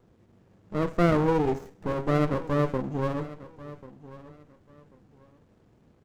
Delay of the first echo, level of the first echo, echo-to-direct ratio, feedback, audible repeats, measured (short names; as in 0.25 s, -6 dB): 1.09 s, -17.5 dB, -17.5 dB, 24%, 2